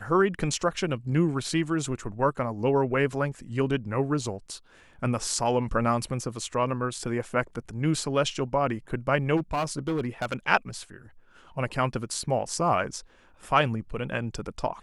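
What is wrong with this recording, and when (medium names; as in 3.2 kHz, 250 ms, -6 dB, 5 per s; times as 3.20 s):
9.36–10.34 s: clipped -23 dBFS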